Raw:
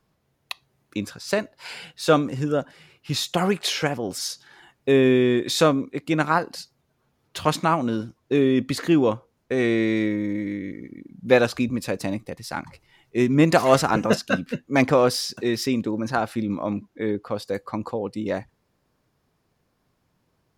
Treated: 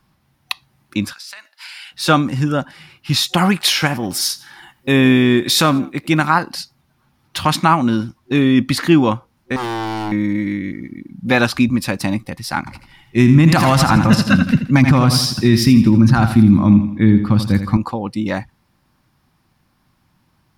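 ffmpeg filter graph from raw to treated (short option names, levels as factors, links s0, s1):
-filter_complex "[0:a]asettb=1/sr,asplit=3[s0][s1][s2];[s0]atrim=end=1.134[s3];[s1]atrim=start=1.13:end=1.92,asetpts=PTS-STARTPTS,afade=t=in:d=0.004:c=qsin,afade=t=out:st=0.786:d=0.004:c=qsin,highpass=1500,acompressor=threshold=0.01:ratio=10:attack=3.2:release=140:knee=1:detection=peak[s4];[s2]atrim=start=1.916[s5];[s3][s4]acrossfade=d=0.004:c1=hsin:c2=qsin[s6];[s6][s5]acrossfade=d=0.004:c1=qsin:c2=hsin,asettb=1/sr,asplit=3[s7][s8][s9];[s7]atrim=end=3.594[s10];[s8]atrim=start=3.59:end=6.27,asetpts=PTS-STARTPTS,afade=t=in:d=0.004:c=qsin,afade=t=out:st=2.676:d=0.004:c=qsin,highshelf=f=12000:g=9.5,asplit=3[s11][s12][s13];[s12]adelay=92,afreqshift=58,volume=0.0794[s14];[s13]adelay=184,afreqshift=116,volume=0.0263[s15];[s11][s14][s15]amix=inputs=3:normalize=0,atrim=end_sample=118188[s16];[s9]atrim=start=6.266[s17];[s10][s16]acrossfade=d=0.004:c1=hsin:c2=qsin[s18];[s18][s17]acrossfade=d=0.004:c1=qsin:c2=hsin,asettb=1/sr,asplit=3[s19][s20][s21];[s19]atrim=end=9.564[s22];[s20]atrim=start=9.56:end=10.12,asetpts=PTS-STARTPTS,afade=t=in:d=0.004:c=qsin,afade=t=out:st=0.556:d=0.004:c=qsin,equalizer=f=1600:t=o:w=2.4:g=-13,aeval=exprs='0.0596*(abs(mod(val(0)/0.0596+3,4)-2)-1)':c=same[s23];[s21]atrim=start=10.116[s24];[s22][s23]acrossfade=d=0.004:c1=hsin:c2=qsin[s25];[s25][s24]acrossfade=d=0.004:c1=qsin:c2=hsin,asettb=1/sr,asplit=3[s26][s27][s28];[s26]atrim=end=12.594[s29];[s27]atrim=start=12.59:end=17.77,asetpts=PTS-STARTPTS,afade=t=in:d=0.004:c=qsin,afade=t=out:st=5.176:d=0.004:c=qsin,asubboost=boost=7.5:cutoff=220,aecho=1:1:82|164|246|328|410:0.316|0.136|0.0585|0.0251|0.0108,atrim=end_sample=228438[s30];[s28]atrim=start=17.766[s31];[s29][s30]acrossfade=d=0.004:c1=hsin:c2=qsin[s32];[s32][s31]acrossfade=d=0.004:c1=qsin:c2=hsin,superequalizer=6b=0.708:7b=0.251:8b=0.447:15b=0.631,alimiter=level_in=3.35:limit=0.891:release=50:level=0:latency=1,volume=0.891"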